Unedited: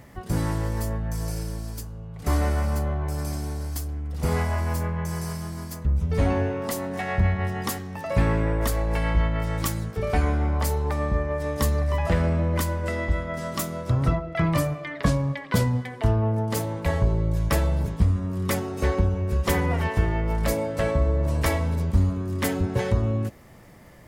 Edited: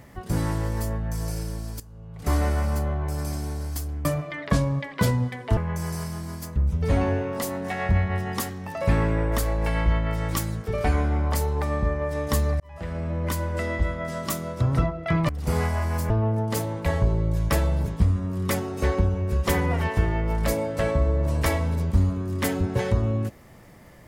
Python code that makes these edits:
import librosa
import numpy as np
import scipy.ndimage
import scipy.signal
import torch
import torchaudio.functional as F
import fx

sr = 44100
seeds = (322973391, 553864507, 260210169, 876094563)

y = fx.edit(x, sr, fx.fade_in_from(start_s=1.8, length_s=0.44, floor_db=-13.0),
    fx.swap(start_s=4.05, length_s=0.81, other_s=14.58, other_length_s=1.52),
    fx.fade_in_span(start_s=11.89, length_s=0.91), tone=tone)